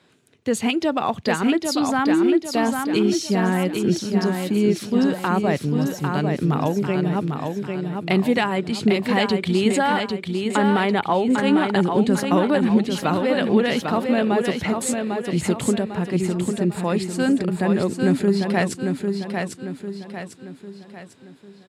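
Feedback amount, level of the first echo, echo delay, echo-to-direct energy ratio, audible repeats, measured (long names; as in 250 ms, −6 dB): 44%, −5.0 dB, 799 ms, −4.0 dB, 5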